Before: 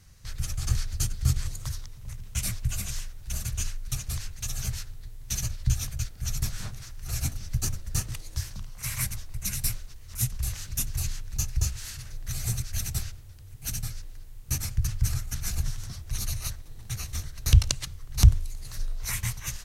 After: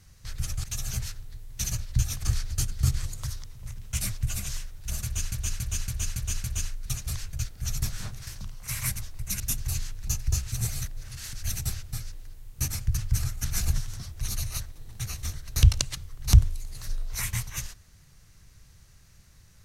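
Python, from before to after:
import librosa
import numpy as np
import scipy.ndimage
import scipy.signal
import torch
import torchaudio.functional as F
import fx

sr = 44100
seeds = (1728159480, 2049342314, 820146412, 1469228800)

y = fx.edit(x, sr, fx.repeat(start_s=3.46, length_s=0.28, count=6),
    fx.move(start_s=4.35, length_s=1.58, to_s=0.64),
    fx.cut(start_s=6.87, length_s=1.55),
    fx.cut(start_s=9.55, length_s=1.14),
    fx.reverse_span(start_s=11.81, length_s=0.81),
    fx.cut(start_s=13.21, length_s=0.61),
    fx.clip_gain(start_s=15.33, length_s=0.35, db=3.0), tone=tone)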